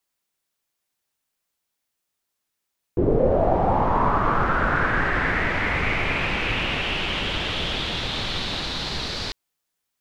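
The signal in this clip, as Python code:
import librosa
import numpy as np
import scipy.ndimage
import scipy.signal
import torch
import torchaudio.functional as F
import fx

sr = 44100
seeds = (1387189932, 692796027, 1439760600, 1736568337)

y = fx.riser_noise(sr, seeds[0], length_s=6.35, colour='pink', kind='lowpass', start_hz=360.0, end_hz=4400.0, q=4.2, swell_db=-11.5, law='linear')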